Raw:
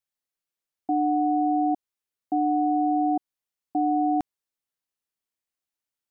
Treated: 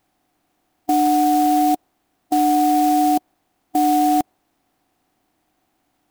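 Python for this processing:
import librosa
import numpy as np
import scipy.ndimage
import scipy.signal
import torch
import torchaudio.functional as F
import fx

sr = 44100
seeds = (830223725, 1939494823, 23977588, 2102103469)

y = fx.bin_compress(x, sr, power=0.6)
y = fx.dynamic_eq(y, sr, hz=560.0, q=0.85, threshold_db=-38.0, ratio=4.0, max_db=5)
y = fx.clock_jitter(y, sr, seeds[0], jitter_ms=0.041)
y = y * 10.0 ** (3.5 / 20.0)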